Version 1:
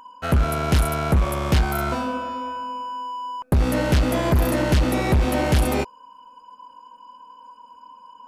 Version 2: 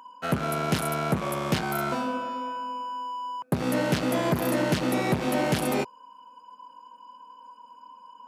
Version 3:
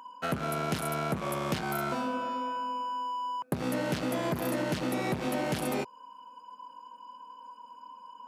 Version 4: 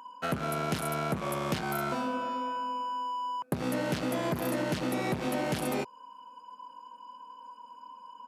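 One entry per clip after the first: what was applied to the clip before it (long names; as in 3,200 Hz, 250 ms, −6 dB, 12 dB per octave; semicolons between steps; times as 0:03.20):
high-pass filter 130 Hz 24 dB per octave; level −3 dB
downward compressor 3 to 1, threshold −29 dBFS, peak gain reduction 8 dB
downsampling to 32,000 Hz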